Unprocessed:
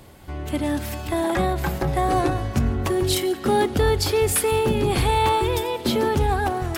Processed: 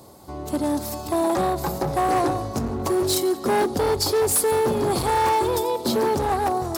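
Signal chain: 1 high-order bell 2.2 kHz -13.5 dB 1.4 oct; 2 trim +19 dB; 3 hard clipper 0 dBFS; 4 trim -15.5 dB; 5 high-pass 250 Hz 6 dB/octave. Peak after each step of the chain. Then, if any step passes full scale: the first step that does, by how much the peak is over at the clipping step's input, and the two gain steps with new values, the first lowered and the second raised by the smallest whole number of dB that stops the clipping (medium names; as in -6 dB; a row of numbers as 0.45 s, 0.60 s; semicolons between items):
-10.0 dBFS, +9.0 dBFS, 0.0 dBFS, -15.5 dBFS, -11.5 dBFS; step 2, 9.0 dB; step 2 +10 dB, step 4 -6.5 dB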